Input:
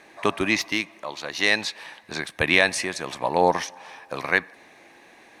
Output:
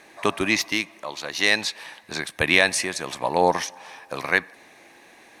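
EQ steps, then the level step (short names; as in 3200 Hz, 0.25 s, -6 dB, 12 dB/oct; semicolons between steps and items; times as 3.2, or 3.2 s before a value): high shelf 6100 Hz +7 dB; 0.0 dB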